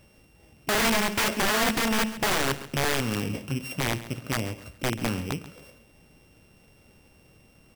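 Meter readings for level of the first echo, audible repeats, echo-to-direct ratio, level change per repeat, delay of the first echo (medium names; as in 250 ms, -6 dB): -15.5 dB, 2, -15.0 dB, -10.0 dB, 136 ms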